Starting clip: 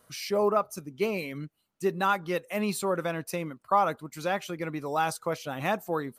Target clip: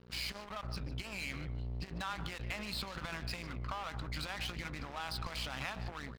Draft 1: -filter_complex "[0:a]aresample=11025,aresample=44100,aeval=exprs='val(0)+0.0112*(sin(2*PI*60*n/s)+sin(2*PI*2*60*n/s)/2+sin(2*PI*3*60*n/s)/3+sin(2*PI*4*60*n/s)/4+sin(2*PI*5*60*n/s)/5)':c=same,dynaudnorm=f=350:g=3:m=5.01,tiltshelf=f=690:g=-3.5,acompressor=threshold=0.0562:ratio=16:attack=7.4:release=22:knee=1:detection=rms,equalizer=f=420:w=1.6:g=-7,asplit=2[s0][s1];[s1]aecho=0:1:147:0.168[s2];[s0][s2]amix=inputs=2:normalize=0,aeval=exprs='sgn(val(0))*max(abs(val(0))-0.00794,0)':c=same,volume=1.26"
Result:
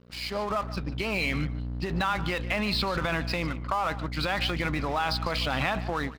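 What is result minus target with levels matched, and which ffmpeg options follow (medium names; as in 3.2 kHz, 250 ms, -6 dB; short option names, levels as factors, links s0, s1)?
compression: peak gain reduction -9 dB; 500 Hz band +5.0 dB
-filter_complex "[0:a]aresample=11025,aresample=44100,aeval=exprs='val(0)+0.0112*(sin(2*PI*60*n/s)+sin(2*PI*2*60*n/s)/2+sin(2*PI*3*60*n/s)/3+sin(2*PI*4*60*n/s)/4+sin(2*PI*5*60*n/s)/5)':c=same,dynaudnorm=f=350:g=3:m=5.01,tiltshelf=f=690:g=-3.5,acompressor=threshold=0.0188:ratio=16:attack=7.4:release=22:knee=1:detection=rms,equalizer=f=420:w=1.6:g=-16,asplit=2[s0][s1];[s1]aecho=0:1:147:0.168[s2];[s0][s2]amix=inputs=2:normalize=0,aeval=exprs='sgn(val(0))*max(abs(val(0))-0.00794,0)':c=same,volume=1.26"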